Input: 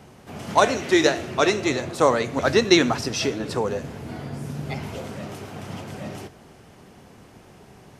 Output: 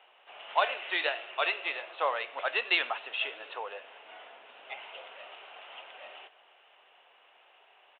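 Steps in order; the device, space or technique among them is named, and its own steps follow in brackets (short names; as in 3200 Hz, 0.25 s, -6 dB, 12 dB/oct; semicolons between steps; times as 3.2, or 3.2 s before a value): musical greeting card (downsampling 8000 Hz; HPF 620 Hz 24 dB/oct; bell 2800 Hz +10 dB 0.4 oct); gain -8 dB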